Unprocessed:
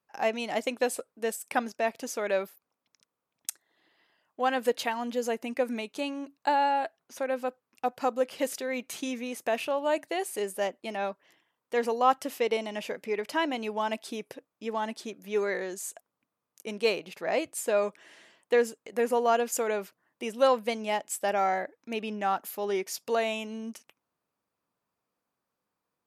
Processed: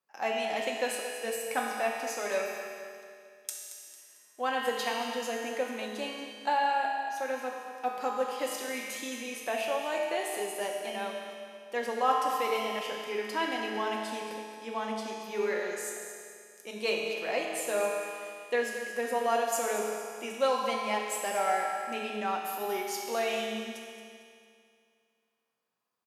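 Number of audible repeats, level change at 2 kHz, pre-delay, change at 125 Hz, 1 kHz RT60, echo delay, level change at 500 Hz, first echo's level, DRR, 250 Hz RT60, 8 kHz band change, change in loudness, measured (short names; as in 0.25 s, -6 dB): 1, +0.5 dB, 5 ms, n/a, 2.3 s, 0.225 s, -3.0 dB, -11.5 dB, -2.0 dB, 2.4 s, +0.5 dB, -2.0 dB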